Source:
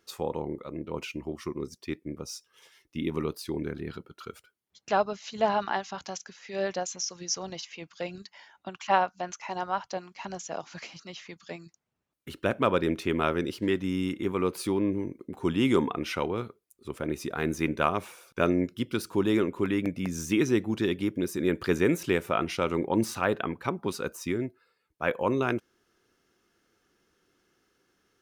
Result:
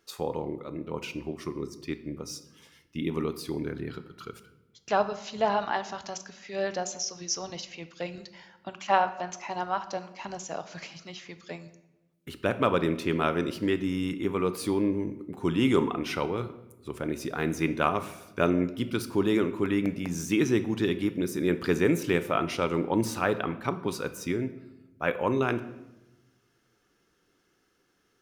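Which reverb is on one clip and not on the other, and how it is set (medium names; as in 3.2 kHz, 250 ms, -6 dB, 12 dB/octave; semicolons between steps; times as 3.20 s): simulated room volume 410 m³, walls mixed, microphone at 0.37 m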